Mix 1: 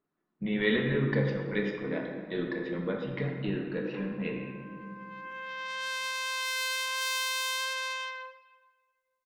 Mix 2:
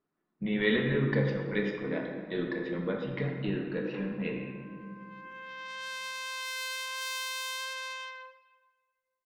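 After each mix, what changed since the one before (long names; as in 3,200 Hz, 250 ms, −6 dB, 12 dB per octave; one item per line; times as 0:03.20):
background −4.5 dB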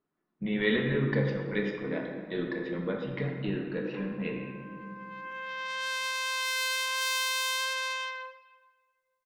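background +6.0 dB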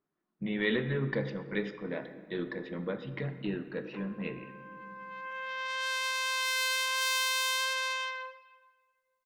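speech: send −9.5 dB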